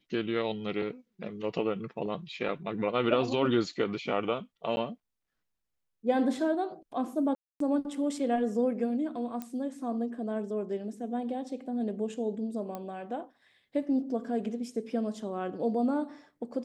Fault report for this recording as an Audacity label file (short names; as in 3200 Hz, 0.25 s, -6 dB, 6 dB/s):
4.760000	4.770000	gap 10 ms
7.350000	7.600000	gap 0.253 s
9.420000	9.420000	pop -23 dBFS
12.750000	12.750000	pop -24 dBFS